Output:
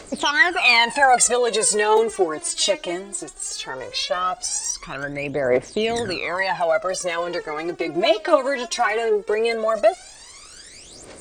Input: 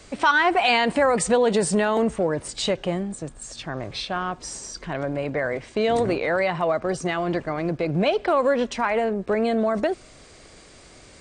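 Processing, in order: tone controls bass -12 dB, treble +7 dB; phaser 0.18 Hz, delay 3.3 ms, feedback 79%

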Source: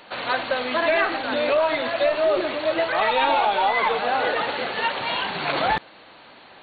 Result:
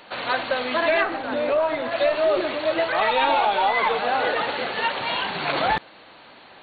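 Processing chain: 1.03–1.92 high shelf 2200 Hz -11 dB

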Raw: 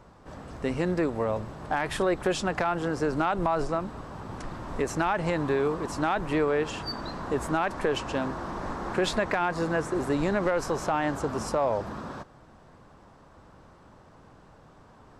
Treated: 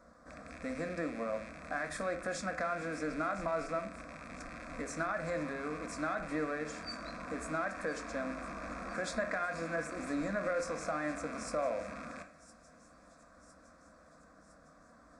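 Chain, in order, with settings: rattling part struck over -41 dBFS, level -26 dBFS; HPF 55 Hz; bell 210 Hz -4 dB 2.3 oct; de-hum 88.27 Hz, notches 30; in parallel at -3 dB: compressor, threshold -42 dBFS, peak gain reduction 18 dB; on the sum: fixed phaser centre 590 Hz, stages 8; thin delay 1.009 s, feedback 62%, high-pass 5000 Hz, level -14 dB; on a send at -8 dB: reverb RT60 0.55 s, pre-delay 3 ms; on the sum: downsampling 22050 Hz; gain -6 dB

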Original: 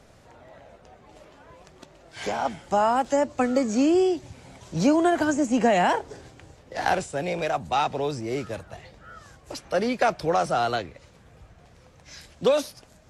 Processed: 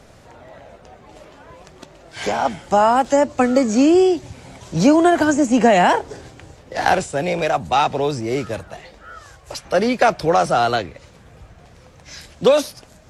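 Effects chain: 8.68–9.64 bell 76 Hz -> 340 Hz -14.5 dB 0.82 oct; gain +7 dB

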